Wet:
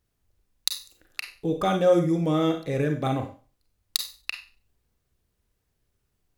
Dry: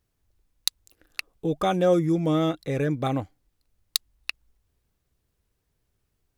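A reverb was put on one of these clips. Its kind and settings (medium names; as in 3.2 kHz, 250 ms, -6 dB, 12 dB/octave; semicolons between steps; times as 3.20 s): Schroeder reverb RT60 0.36 s, combs from 31 ms, DRR 5 dB; trim -1 dB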